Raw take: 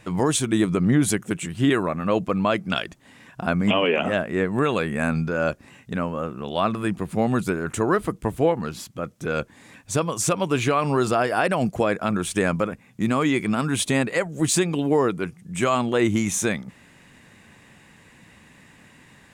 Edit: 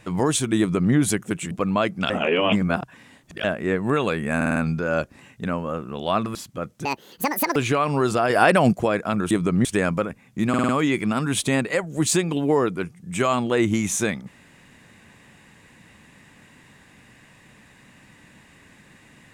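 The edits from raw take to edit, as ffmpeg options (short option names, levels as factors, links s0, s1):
-filter_complex "[0:a]asplit=19[s0][s1][s2][s3][s4][s5][s6][s7][s8][s9][s10][s11][s12][s13][s14][s15][s16][s17][s18];[s0]atrim=end=1.512[s19];[s1]atrim=start=2.198:end=2.792[s20];[s2]atrim=start=2.788:end=4.132,asetpts=PTS-STARTPTS,areverse[s21];[s3]atrim=start=4.128:end=5.102[s22];[s4]atrim=start=5.048:end=5.102[s23];[s5]atrim=start=5.048:end=5.102[s24];[s6]atrim=start=5.048:end=5.102[s25];[s7]atrim=start=5.048:end=6.842[s26];[s8]atrim=start=8.758:end=9.264[s27];[s9]atrim=start=9.26:end=10.52,asetpts=PTS-STARTPTS,asetrate=78498,aresample=44100[s28];[s10]atrim=start=10.516:end=11.262[s29];[s11]atrim=start=11.258:end=11.692,asetpts=PTS-STARTPTS,volume=1.88[s30];[s12]atrim=start=11.688:end=12.272[s31];[s13]atrim=start=0.588:end=0.932[s32];[s14]atrim=start=12.268:end=13.162[s33];[s15]atrim=start=13.108:end=13.162[s34];[s16]atrim=start=13.108:end=13.162[s35];[s17]atrim=start=13.108:end=13.162[s36];[s18]atrim=start=13.108[s37];[s19][s20]acrossfade=d=0.004:c1=hsin:c2=hsin[s38];[s38][s21]acrossfade=d=0.004:c1=hsin:c2=hsin[s39];[s39][s22]acrossfade=d=0.004:c1=hsin:c2=hsin[s40];[s40][s23]acrossfade=d=0.004:c1=hsin:c2=hsin[s41];[s41][s24]acrossfade=d=0.004:c1=hsin:c2=hsin[s42];[s42][s25]acrossfade=d=0.004:c1=hsin:c2=hsin[s43];[s43][s26]acrossfade=d=0.004:c1=hsin:c2=hsin[s44];[s44][s27]acrossfade=d=0.004:c1=hsin:c2=hsin[s45];[s45][s28]acrossfade=d=0.004:c1=hsin:c2=hsin[s46];[s46][s29]acrossfade=d=0.004:c1=hsin:c2=hsin[s47];[s47][s30]acrossfade=d=0.004:c1=hsin:c2=hsin[s48];[s48][s31]acrossfade=d=0.004:c1=hsin:c2=hsin[s49];[s49][s32]acrossfade=d=0.004:c1=hsin:c2=hsin[s50];[s50][s33]acrossfade=d=0.004:c1=hsin:c2=hsin[s51];[s51][s34]acrossfade=d=0.004:c1=hsin:c2=hsin[s52];[s52][s35]acrossfade=d=0.004:c1=hsin:c2=hsin[s53];[s53][s36]acrossfade=d=0.004:c1=hsin:c2=hsin[s54];[s54][s37]acrossfade=d=0.004:c1=hsin:c2=hsin"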